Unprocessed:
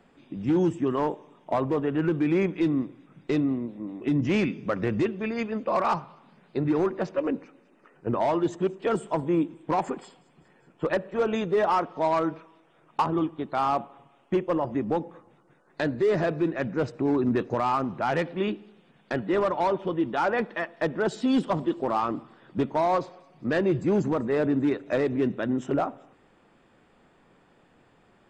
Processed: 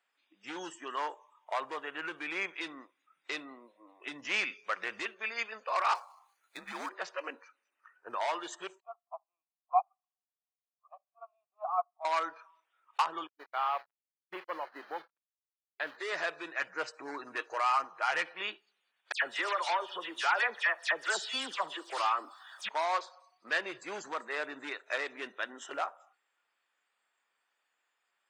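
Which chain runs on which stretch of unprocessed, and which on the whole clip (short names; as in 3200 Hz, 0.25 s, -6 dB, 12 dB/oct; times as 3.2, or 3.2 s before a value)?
5.95–6.89 median filter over 9 samples + high shelf 5900 Hz +5 dB + frequency shift -100 Hz
8.8–12.05 vowel filter a + band shelf 890 Hz +12.5 dB 1.2 oct + upward expander 2.5:1, over -32 dBFS
13.27–15.97 level-crossing sampler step -34.5 dBFS + expander -31 dBFS + air absorption 380 m
16.56–18.42 HPF 53 Hz + bell 3600 Hz -6 dB 0.29 oct + comb 6.4 ms, depth 44%
19.12–22.69 high shelf 3300 Hz +6 dB + dispersion lows, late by 0.101 s, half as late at 2900 Hz + three-band squash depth 40%
whole clip: HPF 1400 Hz 12 dB/oct; spectral noise reduction 15 dB; gain +3 dB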